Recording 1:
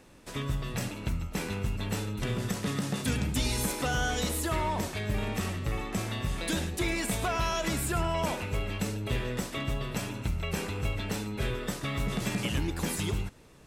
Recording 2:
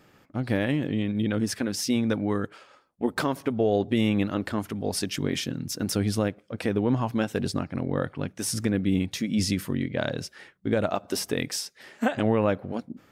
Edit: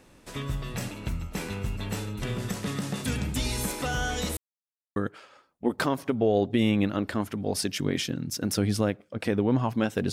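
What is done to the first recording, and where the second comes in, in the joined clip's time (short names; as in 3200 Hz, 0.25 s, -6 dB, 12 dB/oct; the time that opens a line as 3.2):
recording 1
4.37–4.96 mute
4.96 switch to recording 2 from 2.34 s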